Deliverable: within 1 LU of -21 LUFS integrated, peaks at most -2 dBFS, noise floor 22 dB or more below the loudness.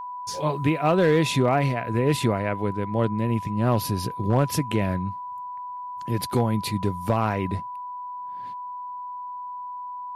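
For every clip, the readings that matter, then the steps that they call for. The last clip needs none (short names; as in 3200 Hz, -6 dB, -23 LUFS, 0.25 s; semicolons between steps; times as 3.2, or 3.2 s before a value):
clipped 0.2%; flat tops at -12.5 dBFS; steady tone 990 Hz; tone level -32 dBFS; loudness -25.5 LUFS; peak -12.5 dBFS; loudness target -21.0 LUFS
-> clip repair -12.5 dBFS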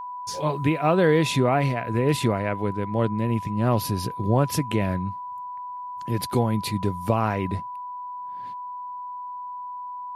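clipped 0.0%; steady tone 990 Hz; tone level -32 dBFS
-> notch 990 Hz, Q 30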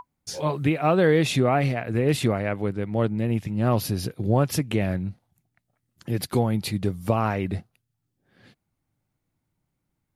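steady tone none; loudness -24.5 LUFS; peak -7.5 dBFS; loudness target -21.0 LUFS
-> gain +3.5 dB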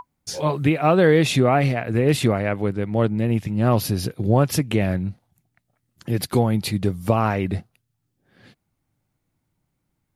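loudness -21.0 LUFS; peak -4.0 dBFS; noise floor -76 dBFS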